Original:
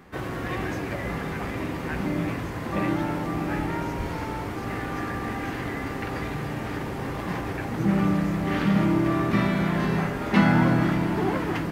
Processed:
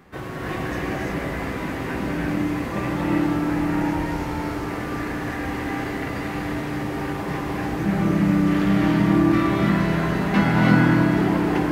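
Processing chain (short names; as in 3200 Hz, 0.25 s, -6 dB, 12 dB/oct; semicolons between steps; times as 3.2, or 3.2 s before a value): non-linear reverb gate 0.37 s rising, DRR -2 dB; gain -1 dB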